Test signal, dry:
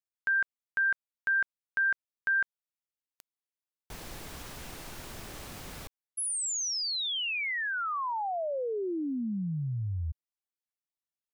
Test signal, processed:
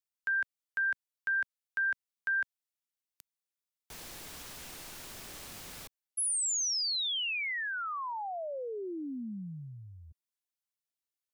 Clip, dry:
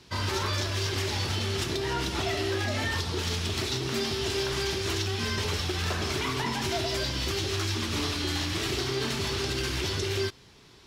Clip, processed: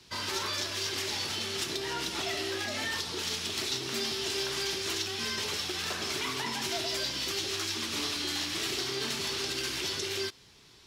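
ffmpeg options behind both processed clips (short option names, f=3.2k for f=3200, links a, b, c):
-filter_complex "[0:a]highshelf=f=2.1k:g=7.5,acrossover=split=160[a][b];[a]acompressor=threshold=-49dB:ratio=6:release=126[c];[c][b]amix=inputs=2:normalize=0,volume=-6dB"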